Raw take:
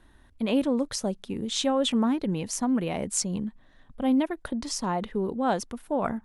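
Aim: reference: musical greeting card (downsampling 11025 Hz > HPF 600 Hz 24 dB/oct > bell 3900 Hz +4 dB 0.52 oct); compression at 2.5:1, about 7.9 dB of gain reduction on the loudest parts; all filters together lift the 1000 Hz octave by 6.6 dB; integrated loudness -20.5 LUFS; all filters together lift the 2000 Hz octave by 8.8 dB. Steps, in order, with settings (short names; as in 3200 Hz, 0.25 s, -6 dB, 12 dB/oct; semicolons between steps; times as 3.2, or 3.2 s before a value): bell 1000 Hz +7 dB; bell 2000 Hz +9 dB; compressor 2.5:1, threshold -29 dBFS; downsampling 11025 Hz; HPF 600 Hz 24 dB/oct; bell 3900 Hz +4 dB 0.52 oct; gain +14 dB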